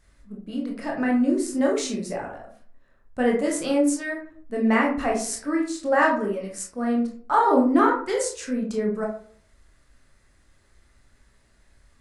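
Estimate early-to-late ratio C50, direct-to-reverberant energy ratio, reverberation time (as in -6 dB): 5.5 dB, -1.5 dB, 0.50 s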